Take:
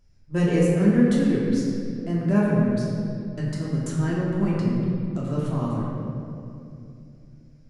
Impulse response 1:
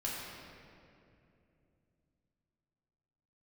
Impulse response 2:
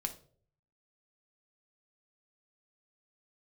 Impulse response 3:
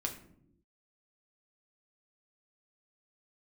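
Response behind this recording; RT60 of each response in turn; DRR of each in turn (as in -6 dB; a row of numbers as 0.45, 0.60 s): 1; 2.7 s, 0.50 s, not exponential; -6.0, 5.5, 1.5 dB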